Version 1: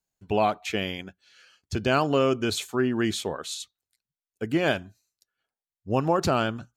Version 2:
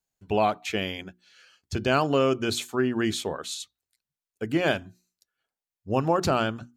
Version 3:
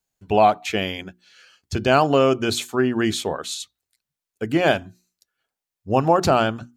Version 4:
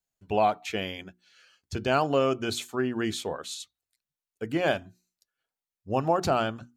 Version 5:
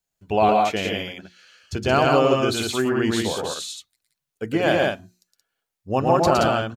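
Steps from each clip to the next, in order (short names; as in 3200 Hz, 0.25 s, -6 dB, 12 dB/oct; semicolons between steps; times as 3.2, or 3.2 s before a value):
notches 60/120/180/240/300/360 Hz
dynamic EQ 740 Hz, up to +5 dB, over -37 dBFS, Q 2.5; gain +4.5 dB
flange 0.8 Hz, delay 1.3 ms, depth 1 ms, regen +88%; gain -3 dB
loudspeakers at several distances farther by 39 m -3 dB, 60 m -3 dB; gain +4.5 dB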